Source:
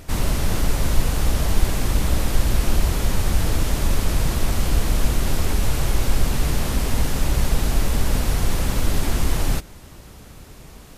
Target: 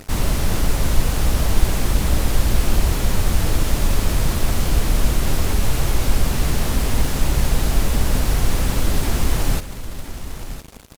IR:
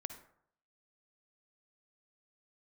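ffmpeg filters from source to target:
-af "acrusher=bits=5:mix=0:aa=0.5,aecho=1:1:1010:0.237,volume=1.19"

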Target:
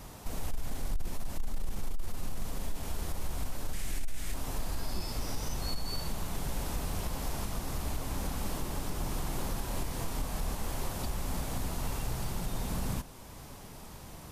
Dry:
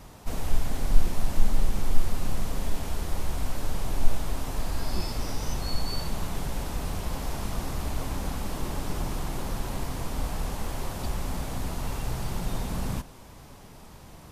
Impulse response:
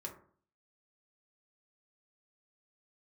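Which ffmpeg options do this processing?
-filter_complex "[0:a]asettb=1/sr,asplit=3[s0][s1][s2];[s0]atrim=end=9.554[s3];[s1]atrim=start=9.55:end=10.55,asetpts=PTS-STARTPTS,afade=t=in:d=0.004:c=qsin,afade=t=out:st=0.996:d=0.004:c=qsin,asplit=2[s4][s5];[s5]adelay=28,volume=0.631[s6];[s4][s6]amix=inputs=2:normalize=0,atrim=end_sample=44100[s7];[s2]atrim=start=10.546[s8];[s3][s7]acrossfade=d=0.004:c1=hsin:c2=qsin[s9];[s9][s8]acrossfade=d=0.004:c1=qsin:c2=hsin,asoftclip=type=tanh:threshold=0.224,asettb=1/sr,asplit=3[s10][s11][s12];[s10]atrim=end=3.734[s13];[s11]atrim=start=3.73:end=4.34,asetpts=PTS-STARTPTS,afade=t=in:d=0.004:c=qsin,afade=t=out:st=0.606:d=0.004:c=qsin,equalizer=f=125:t=o:w=1:g=-4,equalizer=f=500:t=o:w=1:g=-5,equalizer=f=1000:t=o:w=1:g=-8,equalizer=f=2000:t=o:w=1:g=8,equalizer=f=8000:t=o:w=1:g=5[s14];[s12]atrim=start=4.336[s15];[s13][s14]acrossfade=d=0.004:c1=hsin:c2=qsin[s16];[s16][s15]acrossfade=d=0.004:c1=qsin:c2=hsin,alimiter=limit=0.0631:level=0:latency=1:release=460,highshelf=f=6600:g=5.5"

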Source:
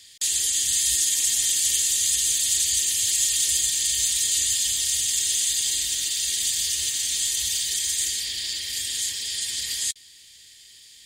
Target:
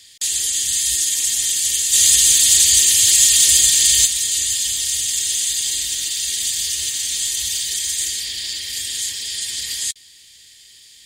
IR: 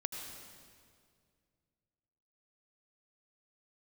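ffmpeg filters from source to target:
-filter_complex "[0:a]asplit=3[s0][s1][s2];[s0]afade=t=out:st=1.92:d=0.02[s3];[s1]acontrast=86,afade=t=in:st=1.92:d=0.02,afade=t=out:st=4.05:d=0.02[s4];[s2]afade=t=in:st=4.05:d=0.02[s5];[s3][s4][s5]amix=inputs=3:normalize=0,volume=1.41"

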